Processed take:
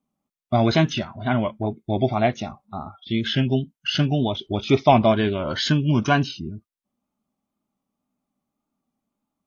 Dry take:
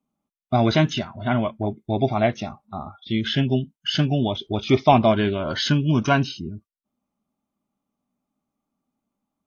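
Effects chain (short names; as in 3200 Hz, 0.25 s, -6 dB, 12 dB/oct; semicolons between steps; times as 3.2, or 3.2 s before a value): wow and flutter 57 cents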